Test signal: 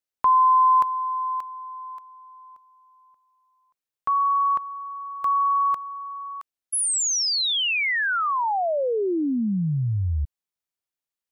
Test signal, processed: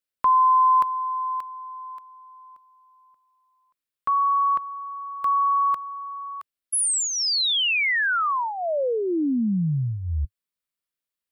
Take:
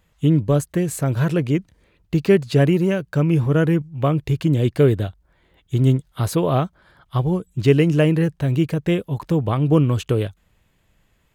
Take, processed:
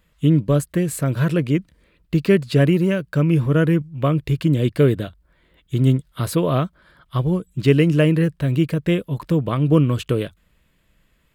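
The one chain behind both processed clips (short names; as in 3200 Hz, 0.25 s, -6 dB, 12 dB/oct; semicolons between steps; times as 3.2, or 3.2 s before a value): thirty-one-band EQ 100 Hz -10 dB, 400 Hz -3 dB, 800 Hz -10 dB, 6300 Hz -6 dB; gain +1.5 dB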